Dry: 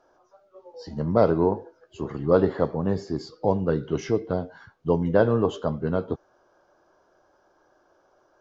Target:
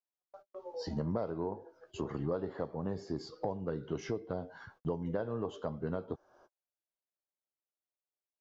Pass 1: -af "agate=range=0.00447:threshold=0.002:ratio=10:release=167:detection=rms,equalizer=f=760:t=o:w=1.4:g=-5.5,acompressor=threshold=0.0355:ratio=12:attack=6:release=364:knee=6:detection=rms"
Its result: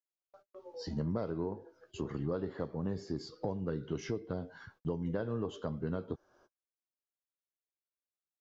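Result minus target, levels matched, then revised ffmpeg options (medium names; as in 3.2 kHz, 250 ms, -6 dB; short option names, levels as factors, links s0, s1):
1 kHz band -3.5 dB
-af "agate=range=0.00447:threshold=0.002:ratio=10:release=167:detection=rms,equalizer=f=760:t=o:w=1.4:g=2.5,acompressor=threshold=0.0355:ratio=12:attack=6:release=364:knee=6:detection=rms"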